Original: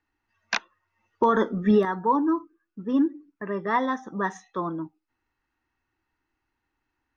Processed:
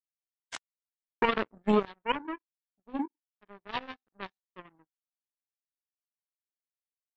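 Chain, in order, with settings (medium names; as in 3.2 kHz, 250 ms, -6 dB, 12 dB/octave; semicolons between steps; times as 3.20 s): knee-point frequency compression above 1.6 kHz 1.5:1; power-law waveshaper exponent 3; treble shelf 4.4 kHz +11 dB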